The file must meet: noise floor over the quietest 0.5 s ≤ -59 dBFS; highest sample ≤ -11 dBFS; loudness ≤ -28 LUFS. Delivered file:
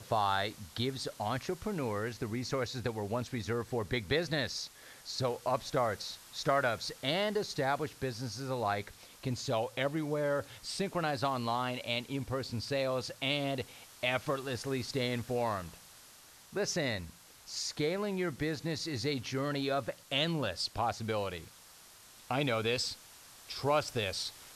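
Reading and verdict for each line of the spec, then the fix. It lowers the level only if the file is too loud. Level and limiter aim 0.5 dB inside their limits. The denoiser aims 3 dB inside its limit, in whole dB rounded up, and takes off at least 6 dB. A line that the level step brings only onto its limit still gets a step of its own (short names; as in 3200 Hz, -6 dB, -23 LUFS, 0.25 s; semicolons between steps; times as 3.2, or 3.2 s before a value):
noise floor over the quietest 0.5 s -57 dBFS: fail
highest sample -14.5 dBFS: OK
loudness -34.5 LUFS: OK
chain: denoiser 6 dB, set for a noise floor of -57 dBFS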